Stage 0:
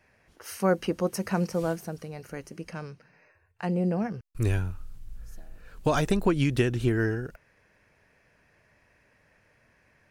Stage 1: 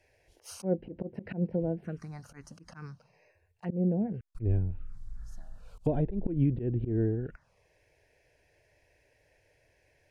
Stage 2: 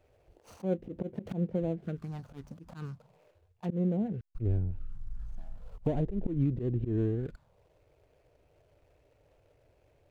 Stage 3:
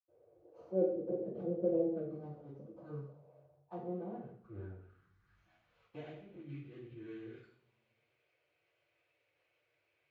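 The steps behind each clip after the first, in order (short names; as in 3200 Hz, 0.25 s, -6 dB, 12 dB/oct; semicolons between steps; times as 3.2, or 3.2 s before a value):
treble ducked by the level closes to 650 Hz, closed at -24 dBFS; envelope phaser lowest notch 200 Hz, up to 1200 Hz, full sweep at -28.5 dBFS; auto swell 0.111 s
median filter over 25 samples; compressor 1.5:1, threshold -41 dBFS, peak gain reduction 7 dB; wow and flutter 28 cents; gain +4.5 dB
band-pass sweep 520 Hz -> 2300 Hz, 2.85–5.46; reverb RT60 0.60 s, pre-delay 76 ms; gain +4.5 dB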